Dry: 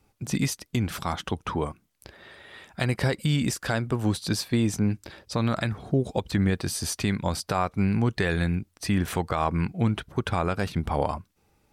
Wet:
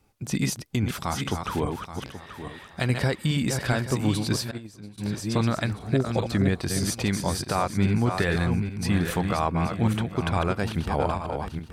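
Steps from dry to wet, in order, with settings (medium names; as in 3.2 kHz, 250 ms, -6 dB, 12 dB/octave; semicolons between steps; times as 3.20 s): backward echo that repeats 414 ms, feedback 45%, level -5.5 dB; 4.51–4.98 s: gate -18 dBFS, range -20 dB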